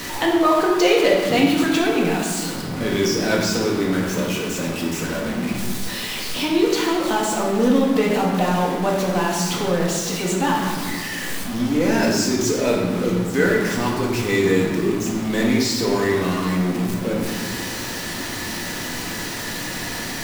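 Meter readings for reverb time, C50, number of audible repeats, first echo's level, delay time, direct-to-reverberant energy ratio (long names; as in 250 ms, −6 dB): 1.5 s, 2.0 dB, no echo audible, no echo audible, no echo audible, −3.0 dB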